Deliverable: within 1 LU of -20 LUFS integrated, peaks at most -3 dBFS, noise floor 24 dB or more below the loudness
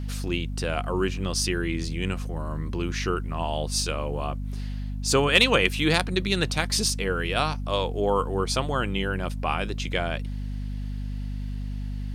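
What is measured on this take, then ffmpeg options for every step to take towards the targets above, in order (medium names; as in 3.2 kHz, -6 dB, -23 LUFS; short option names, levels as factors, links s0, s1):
hum 50 Hz; highest harmonic 250 Hz; hum level -29 dBFS; loudness -26.5 LUFS; peak level -5.0 dBFS; loudness target -20.0 LUFS
-> -af "bandreject=f=50:t=h:w=4,bandreject=f=100:t=h:w=4,bandreject=f=150:t=h:w=4,bandreject=f=200:t=h:w=4,bandreject=f=250:t=h:w=4"
-af "volume=2.11,alimiter=limit=0.708:level=0:latency=1"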